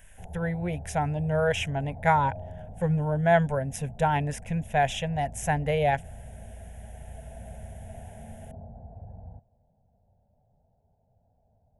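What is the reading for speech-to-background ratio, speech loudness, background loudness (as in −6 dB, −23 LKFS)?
17.0 dB, −27.0 LKFS, −44.0 LKFS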